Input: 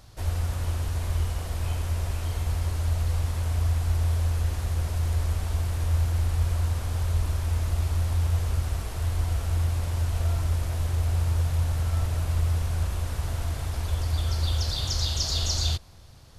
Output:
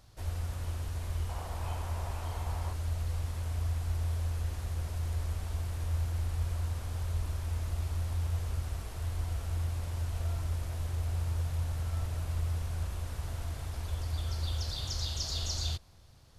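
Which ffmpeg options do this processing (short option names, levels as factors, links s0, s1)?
-filter_complex "[0:a]asettb=1/sr,asplit=3[s0][s1][s2];[s0]atrim=end=1.294[s3];[s1]atrim=start=1.29:end=2.73,asetpts=PTS-STARTPTS,afade=t=in:d=0.004:c=qsin,afade=t=out:st=1.436:d=0.004:c=qsin,equalizer=f=880:t=o:w=1.1:g=10[s4];[s2]atrim=start=2.726[s5];[s3][s4]acrossfade=d=0.004:c1=hsin:c2=qsin[s6];[s6][s5]acrossfade=d=0.004:c1=qsin:c2=hsin,volume=0.398"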